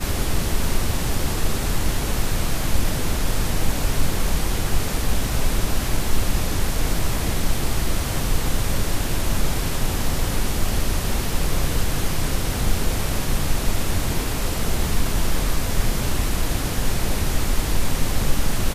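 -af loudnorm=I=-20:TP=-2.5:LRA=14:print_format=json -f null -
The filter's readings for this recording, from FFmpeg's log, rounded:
"input_i" : "-24.8",
"input_tp" : "-5.2",
"input_lra" : "0.2",
"input_thresh" : "-34.8",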